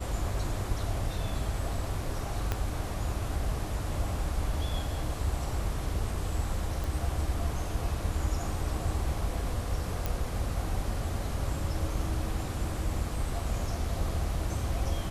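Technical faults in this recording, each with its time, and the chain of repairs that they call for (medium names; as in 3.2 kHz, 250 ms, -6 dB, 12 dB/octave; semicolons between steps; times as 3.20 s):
2.52 s: pop -15 dBFS
6.84 s: pop
10.06 s: pop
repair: de-click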